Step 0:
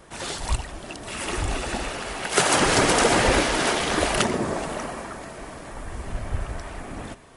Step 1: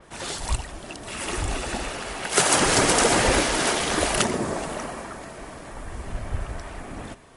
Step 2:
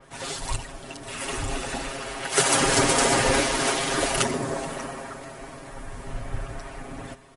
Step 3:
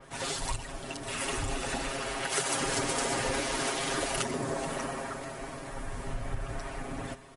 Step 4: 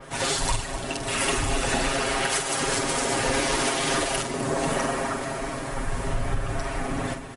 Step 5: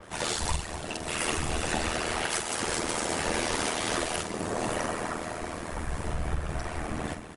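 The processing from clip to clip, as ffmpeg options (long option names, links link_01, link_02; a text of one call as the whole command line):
ffmpeg -i in.wav -af "adynamicequalizer=threshold=0.0178:dfrequency=5100:dqfactor=0.7:tfrequency=5100:tqfactor=0.7:attack=5:release=100:ratio=0.375:range=2.5:mode=boostabove:tftype=highshelf,volume=-1dB" out.wav
ffmpeg -i in.wav -af "aecho=1:1:7.4:0.85,volume=-3.5dB" out.wav
ffmpeg -i in.wav -af "acompressor=threshold=-29dB:ratio=4" out.wav
ffmpeg -i in.wav -filter_complex "[0:a]alimiter=limit=-22.5dB:level=0:latency=1:release=479,asplit=2[link_01][link_02];[link_02]adelay=47,volume=-9dB[link_03];[link_01][link_03]amix=inputs=2:normalize=0,aecho=1:1:252:0.237,volume=8.5dB" out.wav
ffmpeg -i in.wav -af "aeval=exprs='val(0)*sin(2*PI*40*n/s)':channel_layout=same,volume=-2dB" out.wav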